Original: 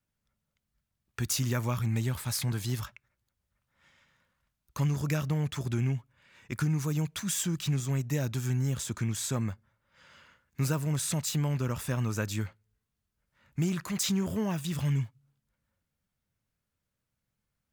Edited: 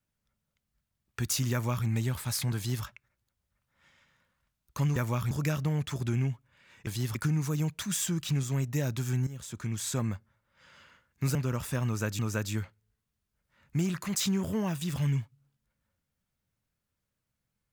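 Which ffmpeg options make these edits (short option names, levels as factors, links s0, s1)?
-filter_complex "[0:a]asplit=8[s0][s1][s2][s3][s4][s5][s6][s7];[s0]atrim=end=4.962[s8];[s1]atrim=start=1.518:end=1.872[s9];[s2]atrim=start=4.958:end=6.522[s10];[s3]atrim=start=2.558:end=2.842[s11];[s4]atrim=start=6.518:end=8.64,asetpts=PTS-STARTPTS,afade=t=out:st=2.118:d=0.004:c=hsin:silence=0.188365[s12];[s5]atrim=start=8.64:end=10.722,asetpts=PTS-STARTPTS,afade=t=in:d=0.64:silence=0.188365[s13];[s6]atrim=start=11.508:end=12.352[s14];[s7]atrim=start=12.018[s15];[s8][s9]acrossfade=d=0.004:c1=hsin:c2=hsin[s16];[s16][s10]acrossfade=d=0.004:c1=hsin:c2=hsin[s17];[s17][s11]acrossfade=d=0.004:c1=hsin:c2=hsin[s18];[s12][s13]concat=n=2:v=0:a=1[s19];[s18][s19]acrossfade=d=0.004:c1=hsin:c2=hsin[s20];[s20][s14]acrossfade=d=0.004:c1=hsin:c2=hsin[s21];[s21][s15]acrossfade=d=0.004:c1=hsin:c2=hsin"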